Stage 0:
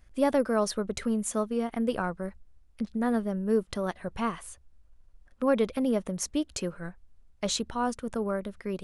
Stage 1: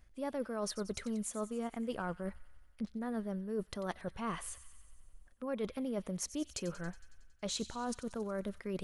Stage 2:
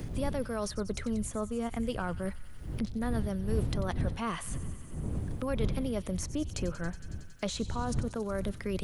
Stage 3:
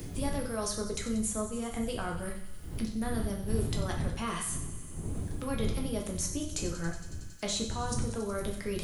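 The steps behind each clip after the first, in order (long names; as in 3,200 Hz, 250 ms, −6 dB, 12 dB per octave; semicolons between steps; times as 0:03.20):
reversed playback; downward compressor 6 to 1, threshold −35 dBFS, peak gain reduction 15.5 dB; reversed playback; delay with a high-pass on its return 92 ms, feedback 67%, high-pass 2,100 Hz, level −13.5 dB
wind on the microphone 100 Hz −39 dBFS; multiband upward and downward compressor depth 70%; level +3.5 dB
high-shelf EQ 4,200 Hz +11 dB; dense smooth reverb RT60 0.61 s, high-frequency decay 0.85×, pre-delay 0 ms, DRR 0 dB; level −4 dB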